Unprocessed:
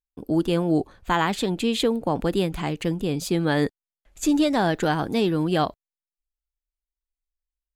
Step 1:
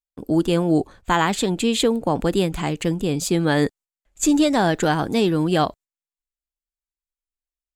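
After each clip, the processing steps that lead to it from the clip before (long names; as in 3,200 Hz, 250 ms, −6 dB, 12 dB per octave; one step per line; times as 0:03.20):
noise gate −45 dBFS, range −11 dB
parametric band 7,500 Hz +7 dB 0.45 octaves
level +3 dB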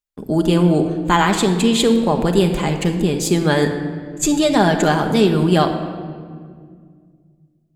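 rectangular room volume 3,200 cubic metres, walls mixed, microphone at 1.3 metres
level +2.5 dB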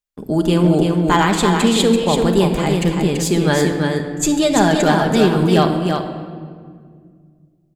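hard clipping −5.5 dBFS, distortion −29 dB
single-tap delay 335 ms −5 dB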